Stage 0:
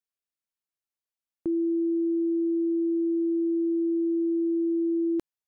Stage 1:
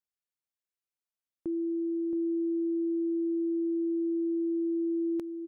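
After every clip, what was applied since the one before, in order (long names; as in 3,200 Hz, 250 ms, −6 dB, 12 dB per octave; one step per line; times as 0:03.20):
single-tap delay 673 ms −6.5 dB
level −5.5 dB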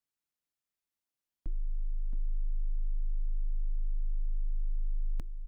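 frequency shifter −360 Hz
level +1 dB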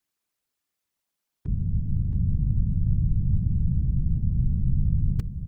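random phases in short frames
level +8 dB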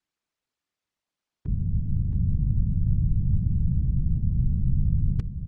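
high-frequency loss of the air 77 metres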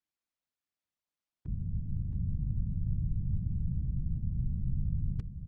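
notch filter 410 Hz, Q 12
level −9 dB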